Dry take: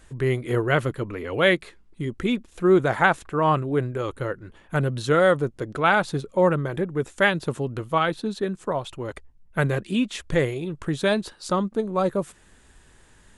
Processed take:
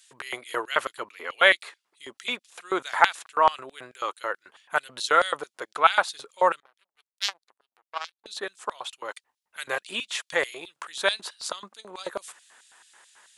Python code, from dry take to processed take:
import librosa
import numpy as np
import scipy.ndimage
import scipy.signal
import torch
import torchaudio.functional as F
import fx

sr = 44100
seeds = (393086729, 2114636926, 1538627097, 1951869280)

y = fx.power_curve(x, sr, exponent=3.0, at=(6.6, 8.26))
y = fx.filter_lfo_highpass(y, sr, shape='square', hz=4.6, low_hz=880.0, high_hz=3700.0, q=1.3)
y = y * 10.0 ** (3.0 / 20.0)